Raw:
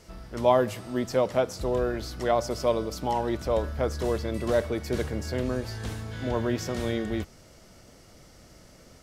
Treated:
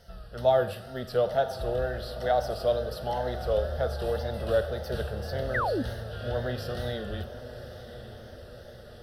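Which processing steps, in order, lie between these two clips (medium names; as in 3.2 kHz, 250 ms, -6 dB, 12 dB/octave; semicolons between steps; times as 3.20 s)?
static phaser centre 1.5 kHz, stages 8; wow and flutter 93 cents; on a send: echo that smears into a reverb 1041 ms, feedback 58%, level -12 dB; on the sum: Schroeder reverb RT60 0.73 s, combs from 32 ms, DRR 12 dB; painted sound fall, 5.54–5.83 s, 220–2100 Hz -28 dBFS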